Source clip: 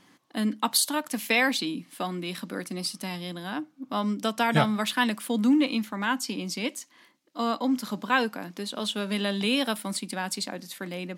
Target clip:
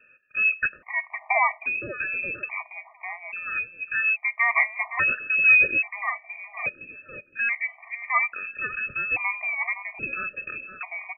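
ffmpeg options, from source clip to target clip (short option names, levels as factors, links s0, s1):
-filter_complex "[0:a]lowpass=f=2400:t=q:w=0.5098,lowpass=f=2400:t=q:w=0.6013,lowpass=f=2400:t=q:w=0.9,lowpass=f=2400:t=q:w=2.563,afreqshift=-2800,asplit=2[s0][s1];[s1]adelay=515,lowpass=f=1400:p=1,volume=0.398,asplit=2[s2][s3];[s3]adelay=515,lowpass=f=1400:p=1,volume=0.27,asplit=2[s4][s5];[s5]adelay=515,lowpass=f=1400:p=1,volume=0.27[s6];[s0][s2][s4][s6]amix=inputs=4:normalize=0,afftfilt=real='re*gt(sin(2*PI*0.6*pts/sr)*(1-2*mod(floor(b*sr/1024/610),2)),0)':imag='im*gt(sin(2*PI*0.6*pts/sr)*(1-2*mod(floor(b*sr/1024/610),2)),0)':win_size=1024:overlap=0.75,volume=1.68"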